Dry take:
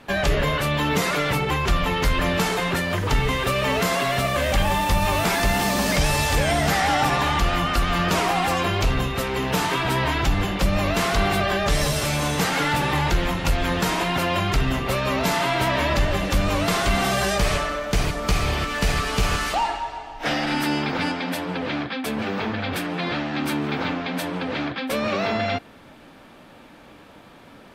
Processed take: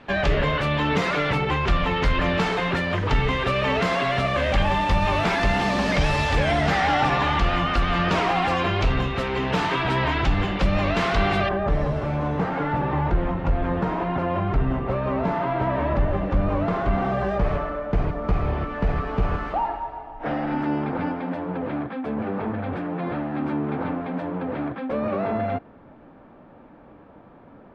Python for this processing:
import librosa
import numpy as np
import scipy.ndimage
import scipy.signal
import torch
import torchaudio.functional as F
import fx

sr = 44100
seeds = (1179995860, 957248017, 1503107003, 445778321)

y = fx.lowpass(x, sr, hz=fx.steps((0.0, 3500.0), (11.49, 1100.0)), slope=12)